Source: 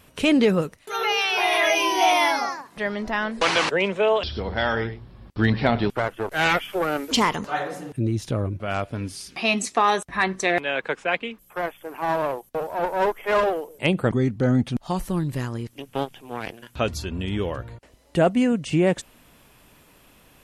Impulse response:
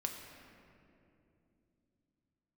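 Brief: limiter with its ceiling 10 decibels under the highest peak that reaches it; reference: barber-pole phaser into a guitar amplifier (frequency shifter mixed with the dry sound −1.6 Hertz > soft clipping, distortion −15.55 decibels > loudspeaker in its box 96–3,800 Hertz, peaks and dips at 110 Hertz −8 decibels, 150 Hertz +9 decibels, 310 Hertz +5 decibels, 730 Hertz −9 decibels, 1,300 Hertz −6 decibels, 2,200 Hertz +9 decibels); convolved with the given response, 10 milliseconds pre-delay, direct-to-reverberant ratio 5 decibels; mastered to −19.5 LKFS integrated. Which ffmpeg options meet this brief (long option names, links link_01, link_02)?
-filter_complex "[0:a]alimiter=limit=-17.5dB:level=0:latency=1,asplit=2[link_01][link_02];[1:a]atrim=start_sample=2205,adelay=10[link_03];[link_02][link_03]afir=irnorm=-1:irlink=0,volume=-5.5dB[link_04];[link_01][link_04]amix=inputs=2:normalize=0,asplit=2[link_05][link_06];[link_06]afreqshift=-1.6[link_07];[link_05][link_07]amix=inputs=2:normalize=1,asoftclip=threshold=-23.5dB,highpass=96,equalizer=frequency=110:width_type=q:width=4:gain=-8,equalizer=frequency=150:width_type=q:width=4:gain=9,equalizer=frequency=310:width_type=q:width=4:gain=5,equalizer=frequency=730:width_type=q:width=4:gain=-9,equalizer=frequency=1300:width_type=q:width=4:gain=-6,equalizer=frequency=2200:width_type=q:width=4:gain=9,lowpass=frequency=3800:width=0.5412,lowpass=frequency=3800:width=1.3066,volume=11.5dB"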